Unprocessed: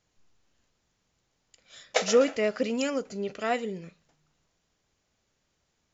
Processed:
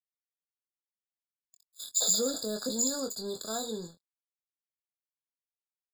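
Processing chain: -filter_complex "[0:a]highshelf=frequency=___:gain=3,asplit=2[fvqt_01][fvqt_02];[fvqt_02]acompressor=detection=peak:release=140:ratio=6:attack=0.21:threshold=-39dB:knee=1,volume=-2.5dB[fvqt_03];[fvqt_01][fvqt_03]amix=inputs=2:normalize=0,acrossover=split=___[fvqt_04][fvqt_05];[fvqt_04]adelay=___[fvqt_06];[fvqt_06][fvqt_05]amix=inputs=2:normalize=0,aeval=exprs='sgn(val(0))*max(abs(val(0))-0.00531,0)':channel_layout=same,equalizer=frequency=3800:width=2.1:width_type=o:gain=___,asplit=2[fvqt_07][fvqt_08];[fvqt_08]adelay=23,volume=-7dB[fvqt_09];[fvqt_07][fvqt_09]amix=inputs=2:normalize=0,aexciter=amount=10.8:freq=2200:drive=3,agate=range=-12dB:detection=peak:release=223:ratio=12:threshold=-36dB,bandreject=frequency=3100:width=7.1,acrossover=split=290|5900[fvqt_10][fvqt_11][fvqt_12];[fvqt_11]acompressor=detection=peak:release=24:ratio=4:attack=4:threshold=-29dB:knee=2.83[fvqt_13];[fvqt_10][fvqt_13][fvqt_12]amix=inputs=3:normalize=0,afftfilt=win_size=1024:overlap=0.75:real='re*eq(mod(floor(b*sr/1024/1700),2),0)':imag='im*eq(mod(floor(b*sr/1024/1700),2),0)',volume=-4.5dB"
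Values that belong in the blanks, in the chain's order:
5600, 5500, 60, -3.5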